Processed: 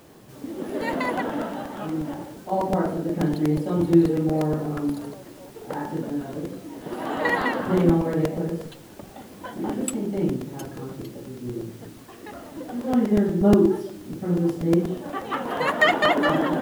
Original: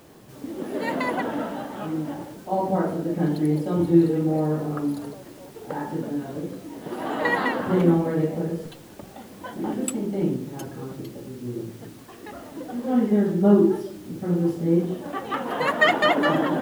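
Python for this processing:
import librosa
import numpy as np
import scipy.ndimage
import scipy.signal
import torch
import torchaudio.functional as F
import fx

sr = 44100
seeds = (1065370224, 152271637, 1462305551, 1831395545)

y = fx.buffer_crackle(x, sr, first_s=0.69, period_s=0.12, block=128, kind='repeat')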